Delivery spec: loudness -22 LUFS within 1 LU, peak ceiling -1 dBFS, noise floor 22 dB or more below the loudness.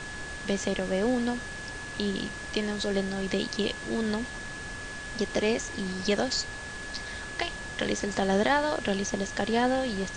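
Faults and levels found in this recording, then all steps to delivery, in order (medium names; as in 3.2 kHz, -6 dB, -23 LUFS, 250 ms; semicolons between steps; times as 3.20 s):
steady tone 1.7 kHz; tone level -39 dBFS; noise floor -39 dBFS; noise floor target -52 dBFS; loudness -30.0 LUFS; peak level -10.5 dBFS; loudness target -22.0 LUFS
-> band-stop 1.7 kHz, Q 30; noise print and reduce 13 dB; trim +8 dB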